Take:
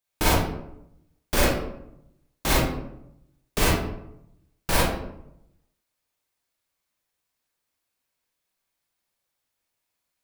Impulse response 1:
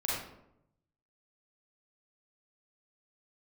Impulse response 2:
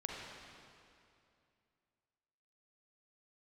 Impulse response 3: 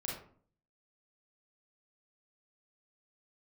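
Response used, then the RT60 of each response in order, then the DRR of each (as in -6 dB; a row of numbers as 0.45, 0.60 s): 1; 0.80, 2.5, 0.50 s; -6.5, -2.0, -4.0 dB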